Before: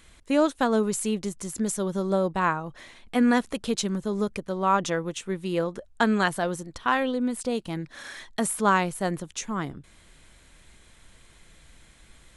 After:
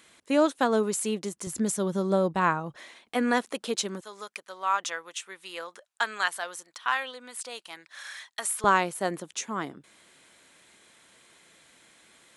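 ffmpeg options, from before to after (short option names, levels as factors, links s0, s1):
-af "asetnsamples=n=441:p=0,asendcmd='1.47 highpass f 92;2.76 highpass f 340;4.01 highpass f 1100;8.64 highpass f 270',highpass=240"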